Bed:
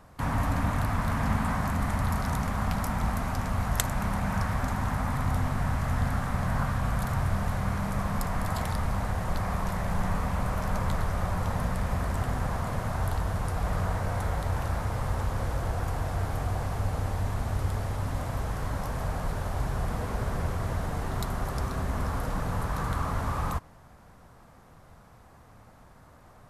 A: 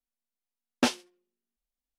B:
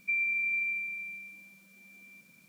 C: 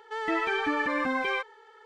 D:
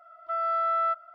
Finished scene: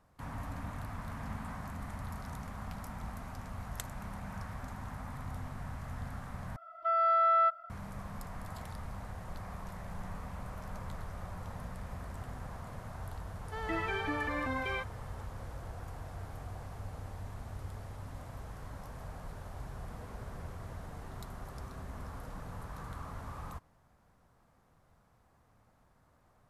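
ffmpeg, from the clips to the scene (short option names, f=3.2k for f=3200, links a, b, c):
-filter_complex "[0:a]volume=-14dB,asplit=2[a][b];[a]atrim=end=6.564[c];[4:a]atrim=end=1.14[d];[b]atrim=start=7.696[e];[3:a]atrim=end=1.85,asetpts=PTS-STARTPTS,volume=-7.5dB,afade=t=in:d=0.004:c=hsin,afade=t=out:st=1.846:d=0.004:c=hsin,adelay=13410[f];[c][d]acrossfade=d=0.004:c1=hsin:c2=hsin[g];[g][e]acrossfade=d=0.004:c1=hsin:c2=hsin[h];[h][f]amix=inputs=2:normalize=0"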